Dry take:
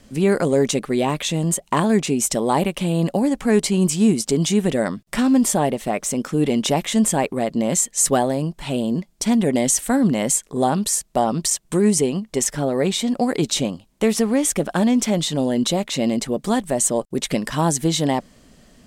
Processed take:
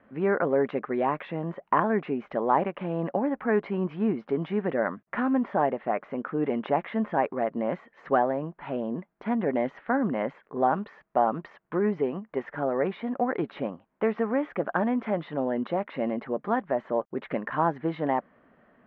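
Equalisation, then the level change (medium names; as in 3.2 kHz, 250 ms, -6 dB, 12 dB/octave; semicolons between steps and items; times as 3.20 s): high-pass 620 Hz 6 dB/octave; four-pole ladder low-pass 2 kHz, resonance 30%; distance through air 320 m; +6.0 dB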